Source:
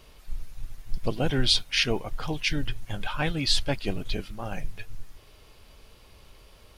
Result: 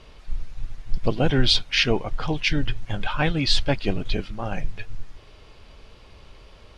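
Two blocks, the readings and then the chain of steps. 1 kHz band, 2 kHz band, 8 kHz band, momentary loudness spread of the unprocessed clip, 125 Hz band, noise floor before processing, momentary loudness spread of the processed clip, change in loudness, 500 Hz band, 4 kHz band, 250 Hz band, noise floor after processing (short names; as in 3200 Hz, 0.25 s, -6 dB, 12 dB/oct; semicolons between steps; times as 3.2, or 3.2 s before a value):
+5.0 dB, +4.5 dB, -1.5 dB, 22 LU, +5.5 dB, -54 dBFS, 20 LU, +4.0 dB, +5.5 dB, +3.0 dB, +5.5 dB, -49 dBFS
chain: air absorption 92 m; gain +5.5 dB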